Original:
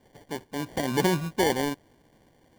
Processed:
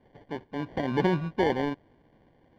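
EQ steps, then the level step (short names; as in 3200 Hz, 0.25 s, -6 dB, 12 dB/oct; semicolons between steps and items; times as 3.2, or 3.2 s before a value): air absorption 320 m; 0.0 dB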